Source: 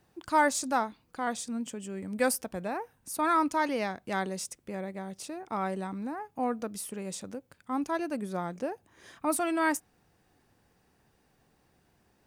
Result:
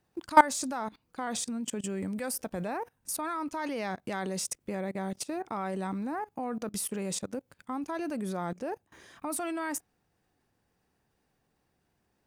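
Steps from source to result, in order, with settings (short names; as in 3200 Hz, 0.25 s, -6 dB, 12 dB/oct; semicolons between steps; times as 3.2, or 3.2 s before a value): level quantiser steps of 21 dB; gain +8.5 dB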